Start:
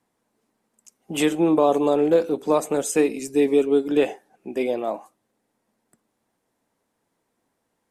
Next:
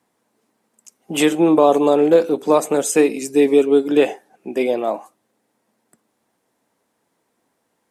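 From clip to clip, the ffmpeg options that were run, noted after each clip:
ffmpeg -i in.wav -af "highpass=frequency=150:poles=1,volume=5.5dB" out.wav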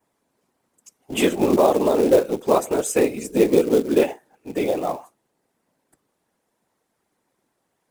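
ffmpeg -i in.wav -af "afftfilt=real='hypot(re,im)*cos(2*PI*random(0))':imag='hypot(re,im)*sin(2*PI*random(1))':win_size=512:overlap=0.75,adynamicequalizer=threshold=0.00447:dfrequency=4200:dqfactor=1:tfrequency=4200:tqfactor=1:attack=5:release=100:ratio=0.375:range=2.5:mode=cutabove:tftype=bell,acrusher=bits=5:mode=log:mix=0:aa=0.000001,volume=2.5dB" out.wav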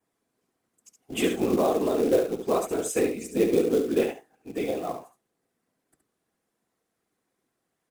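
ffmpeg -i in.wav -af "equalizer=frequency=900:width=6.8:gain=-9,bandreject=frequency=580:width=12,aecho=1:1:70:0.422,volume=-6dB" out.wav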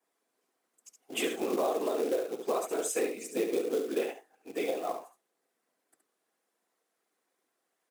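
ffmpeg -i in.wav -af "highpass=400,alimiter=limit=-20dB:level=0:latency=1:release=384" out.wav

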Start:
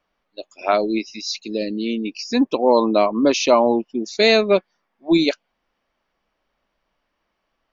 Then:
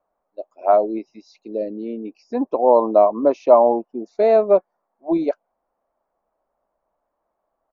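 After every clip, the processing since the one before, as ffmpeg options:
ffmpeg -i in.wav -af "firequalizer=gain_entry='entry(170,0);entry(660,14);entry(1800,-6);entry(3100,-18)':delay=0.05:min_phase=1,volume=-8.5dB" out.wav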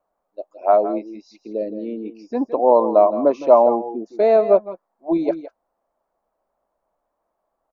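ffmpeg -i in.wav -af "aecho=1:1:164|170:0.2|0.158" out.wav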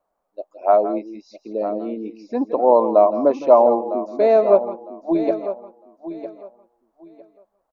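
ffmpeg -i in.wav -af "aecho=1:1:955|1910|2865:0.251|0.0527|0.0111" out.wav

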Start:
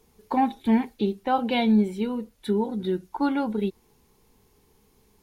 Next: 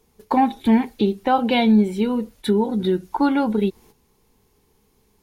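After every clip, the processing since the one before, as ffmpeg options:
ffmpeg -i in.wav -filter_complex "[0:a]agate=range=-10dB:threshold=-53dB:ratio=16:detection=peak,asplit=2[link_01][link_02];[link_02]acompressor=threshold=-30dB:ratio=6,volume=3dB[link_03];[link_01][link_03]amix=inputs=2:normalize=0,volume=2dB" out.wav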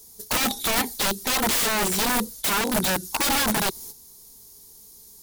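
ffmpeg -i in.wav -af "aexciter=amount=6.3:drive=7.9:freq=3900,aeval=exprs='(mod(7.5*val(0)+1,2)-1)/7.5':channel_layout=same" out.wav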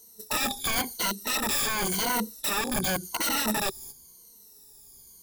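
ffmpeg -i in.wav -af "afftfilt=real='re*pow(10,15/40*sin(2*PI*(1.9*log(max(b,1)*sr/1024/100)/log(2)-(-0.93)*(pts-256)/sr)))':imag='im*pow(10,15/40*sin(2*PI*(1.9*log(max(b,1)*sr/1024/100)/log(2)-(-0.93)*(pts-256)/sr)))':win_size=1024:overlap=0.75,volume=-7dB" out.wav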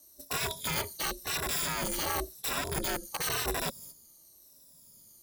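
ffmpeg -i in.wav -af "aeval=exprs='val(0)*sin(2*PI*160*n/s)':channel_layout=same,volume=-2dB" out.wav

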